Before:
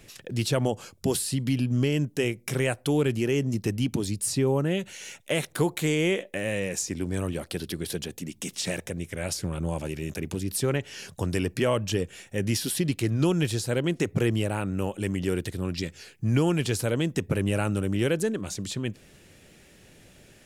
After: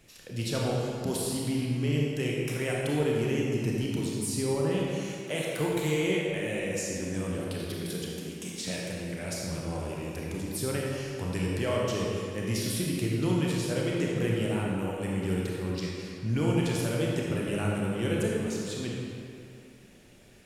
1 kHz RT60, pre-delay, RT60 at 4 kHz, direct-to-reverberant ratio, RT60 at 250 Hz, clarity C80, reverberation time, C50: 2.6 s, 26 ms, 1.7 s, -3.5 dB, 2.4 s, 0.0 dB, 2.5 s, -1.5 dB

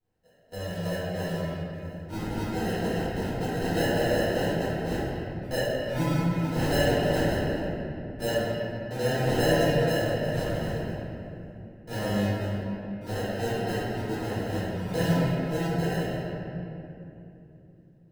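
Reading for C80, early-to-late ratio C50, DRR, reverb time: -3.0 dB, -5.5 dB, -17.0 dB, 2.9 s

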